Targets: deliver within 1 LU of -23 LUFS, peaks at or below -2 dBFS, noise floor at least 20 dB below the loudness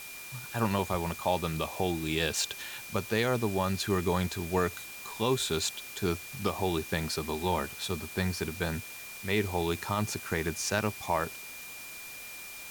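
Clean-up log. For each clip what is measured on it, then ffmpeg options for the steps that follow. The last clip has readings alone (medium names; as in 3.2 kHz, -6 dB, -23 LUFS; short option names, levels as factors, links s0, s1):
steady tone 2.4 kHz; tone level -45 dBFS; noise floor -44 dBFS; noise floor target -52 dBFS; loudness -32.0 LUFS; peak level -15.0 dBFS; loudness target -23.0 LUFS
-> -af "bandreject=f=2400:w=30"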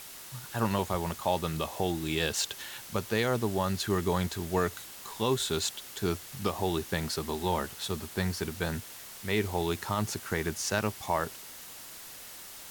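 steady tone not found; noise floor -46 dBFS; noise floor target -52 dBFS
-> -af "afftdn=nr=6:nf=-46"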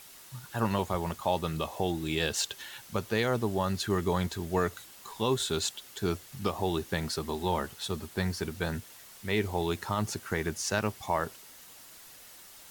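noise floor -51 dBFS; noise floor target -52 dBFS
-> -af "afftdn=nr=6:nf=-51"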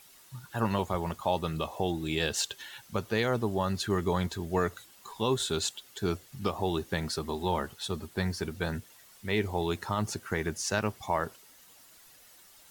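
noise floor -57 dBFS; loudness -32.0 LUFS; peak level -15.0 dBFS; loudness target -23.0 LUFS
-> -af "volume=2.82"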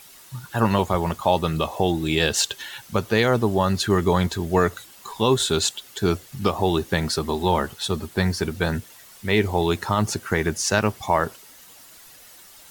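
loudness -23.0 LUFS; peak level -6.0 dBFS; noise floor -48 dBFS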